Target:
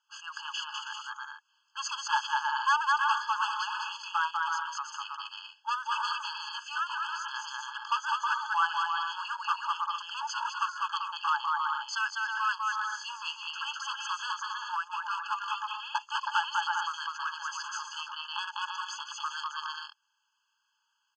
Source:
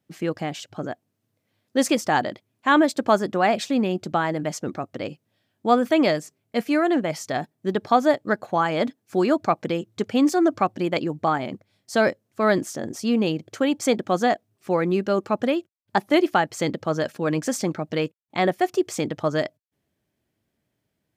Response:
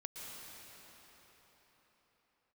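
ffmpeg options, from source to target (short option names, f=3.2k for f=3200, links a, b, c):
-filter_complex "[0:a]lowshelf=f=90:g=10,asplit=2[a][b];[b]aecho=0:1:200|320|392|435.2|461.1:0.631|0.398|0.251|0.158|0.1[c];[a][c]amix=inputs=2:normalize=0,acrossover=split=5300[d][e];[e]acompressor=threshold=-52dB:ratio=4:attack=1:release=60[f];[d][f]amix=inputs=2:normalize=0,aresample=16000,volume=15.5dB,asoftclip=hard,volume=-15.5dB,aresample=44100,alimiter=limit=-24dB:level=0:latency=1:release=52,afftfilt=real='re*eq(mod(floor(b*sr/1024/860),2),1)':imag='im*eq(mod(floor(b*sr/1024/860),2),1)':win_size=1024:overlap=0.75,volume=8dB"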